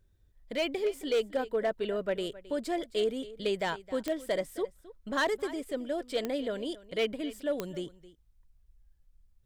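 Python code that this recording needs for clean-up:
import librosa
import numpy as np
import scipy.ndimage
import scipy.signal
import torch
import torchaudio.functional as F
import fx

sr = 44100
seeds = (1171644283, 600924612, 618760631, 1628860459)

y = fx.fix_declip(x, sr, threshold_db=-22.5)
y = fx.fix_declick_ar(y, sr, threshold=10.0)
y = fx.fix_echo_inverse(y, sr, delay_ms=266, level_db=-18.0)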